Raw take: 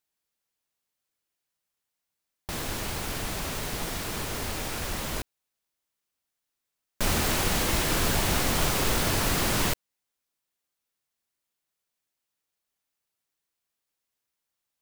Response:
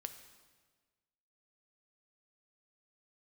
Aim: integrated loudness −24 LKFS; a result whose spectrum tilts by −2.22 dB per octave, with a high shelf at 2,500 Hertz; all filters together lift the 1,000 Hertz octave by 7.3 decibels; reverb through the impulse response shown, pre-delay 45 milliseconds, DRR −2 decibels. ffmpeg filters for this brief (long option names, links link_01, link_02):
-filter_complex "[0:a]equalizer=frequency=1000:width_type=o:gain=8,highshelf=frequency=2500:gain=6,asplit=2[link_01][link_02];[1:a]atrim=start_sample=2205,adelay=45[link_03];[link_02][link_03]afir=irnorm=-1:irlink=0,volume=5.5dB[link_04];[link_01][link_04]amix=inputs=2:normalize=0,volume=-5.5dB"